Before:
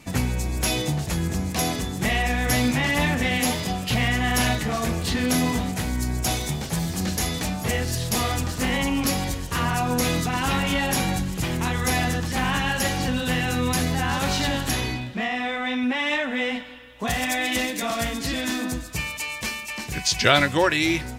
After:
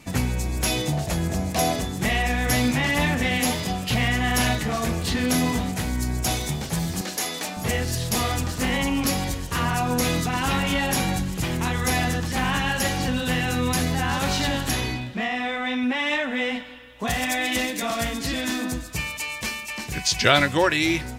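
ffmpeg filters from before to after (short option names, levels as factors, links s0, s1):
-filter_complex "[0:a]asettb=1/sr,asplit=3[s0][s1][s2];[s0]atrim=end=0.924[s3];[s1]atrim=start=0.92:end=1.86,asetpts=PTS-STARTPTS,afade=t=in:d=0.004:c=qsin,afade=t=out:st=0.936:d=0.004:c=qsin,equalizer=f=650:w=3.4:g=9.5[s4];[s2]atrim=start=1.856[s5];[s3][s4]acrossfade=d=0.004:c1=hsin:c2=qsin[s6];[s6][s5]acrossfade=d=0.004:c1=qsin:c2=hsin,asettb=1/sr,asplit=3[s7][s8][s9];[s7]atrim=end=7.014[s10];[s8]atrim=start=7.01:end=7.57,asetpts=PTS-STARTPTS,afade=t=in:d=0.004:c=qsin,afade=t=out:st=0.556:d=0.004:c=qsin,highpass=350[s11];[s9]atrim=start=7.566[s12];[s10][s11]acrossfade=d=0.004:c1=hsin:c2=qsin[s13];[s13][s12]acrossfade=d=0.004:c1=qsin:c2=hsin"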